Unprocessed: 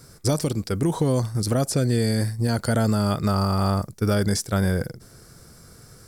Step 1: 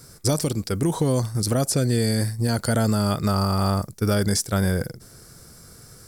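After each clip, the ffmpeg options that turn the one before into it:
-af "highshelf=f=4800:g=5"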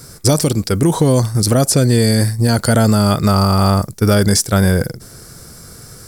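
-af "acontrast=72,volume=1.33"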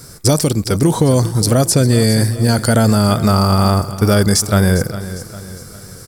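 -af "aecho=1:1:404|808|1212|1616:0.2|0.0898|0.0404|0.0182"

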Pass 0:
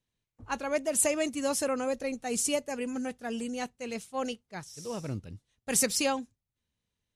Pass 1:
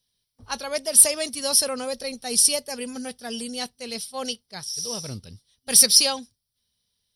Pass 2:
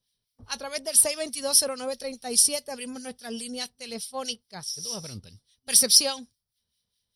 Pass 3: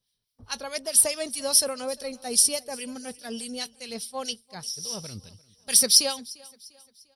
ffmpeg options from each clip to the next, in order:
-filter_complex "[0:a]bass=f=250:g=-1,treble=f=4000:g=10,asplit=2[s0][s1];[s1]acontrast=88,volume=0.891[s2];[s0][s2]amix=inputs=2:normalize=0,superequalizer=6b=0.501:13b=2.51:14b=3.16:15b=0.316:16b=1.78,volume=0.376"
-filter_complex "[0:a]acrossover=split=1600[s0][s1];[s0]aeval=exprs='val(0)*(1-0.7/2+0.7/2*cos(2*PI*4.8*n/s))':c=same[s2];[s1]aeval=exprs='val(0)*(1-0.7/2-0.7/2*cos(2*PI*4.8*n/s))':c=same[s3];[s2][s3]amix=inputs=2:normalize=0"
-af "aecho=1:1:348|696|1044:0.0708|0.0311|0.0137"

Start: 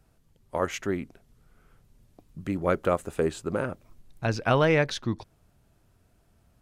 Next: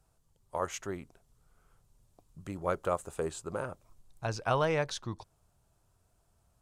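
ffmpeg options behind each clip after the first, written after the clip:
-af "equalizer=f=250:t=o:w=1:g=-7,equalizer=f=1000:t=o:w=1:g=5,equalizer=f=2000:t=o:w=1:g=-5,equalizer=f=8000:t=o:w=1:g=7,volume=0.473"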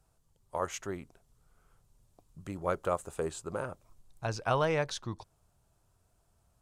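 -af anull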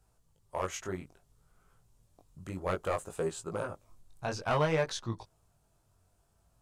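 -af "aeval=exprs='clip(val(0),-1,0.0562)':c=same,flanger=delay=17.5:depth=4.4:speed=0.59,volume=1.5"

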